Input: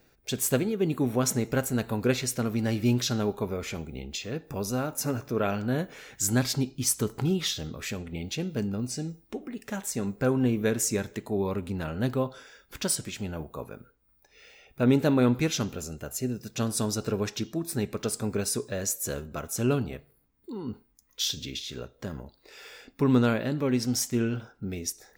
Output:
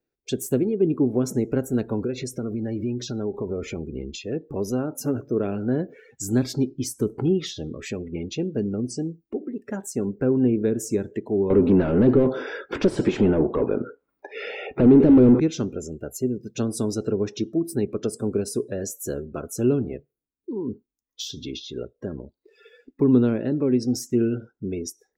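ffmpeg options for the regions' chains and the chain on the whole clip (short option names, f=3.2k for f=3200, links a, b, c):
-filter_complex "[0:a]asettb=1/sr,asplit=3[a][b][c];[a]atrim=end=2.004[d];[b]atrim=start=2:end=4.24,asetpts=PTS-STARTPTS,afade=t=in:d=0.004:c=qsin,afade=t=out:st=2.236:d=0.004:c=qsin,lowshelf=f=200:g=3.5,acompressor=threshold=-29dB:ratio=5:attack=3.2:release=140:knee=1:detection=peak[e];[c]atrim=start=4.236[f];[d][e]acrossfade=d=0.004:c1=hsin:c2=qsin[g];[g][f]acrossfade=d=0.004:c1=qsin:c2=hsin,asettb=1/sr,asplit=3[h][i][j];[h]atrim=end=11.504[k];[i]atrim=start=11.5:end=15.4,asetpts=PTS-STARTPTS,afade=t=in:d=0.004:c=qsin,afade=t=out:st=3.896:d=0.004:c=qsin,highshelf=f=8.5k:g=-4,asplit=2[l][m];[m]highpass=f=720:p=1,volume=34dB,asoftclip=type=tanh:threshold=-10dB[n];[l][n]amix=inputs=2:normalize=0,lowpass=f=1.2k:p=1,volume=-6dB[o];[j]atrim=start=15.396[p];[k][o]acrossfade=d=0.004:c1=hsin:c2=qsin[q];[q][p]acrossfade=d=0.004:c1=qsin:c2=hsin,afftdn=nr=25:nf=-41,equalizer=f=360:w=1.2:g=10,acrossover=split=410[r][s];[s]acompressor=threshold=-30dB:ratio=10[t];[r][t]amix=inputs=2:normalize=0"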